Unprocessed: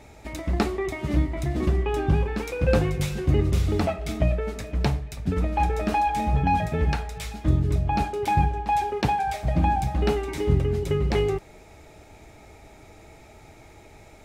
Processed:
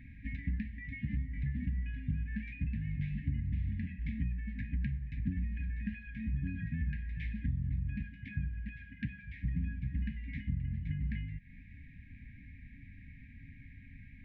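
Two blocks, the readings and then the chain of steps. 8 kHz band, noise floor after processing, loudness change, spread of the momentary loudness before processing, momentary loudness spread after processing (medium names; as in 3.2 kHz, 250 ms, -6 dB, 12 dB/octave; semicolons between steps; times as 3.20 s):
under -35 dB, -54 dBFS, -13.0 dB, 6 LU, 17 LU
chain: compression 6:1, threshold -31 dBFS, peak gain reduction 15 dB; low-pass 2.1 kHz 24 dB/octave; FFT band-reject 290–1600 Hz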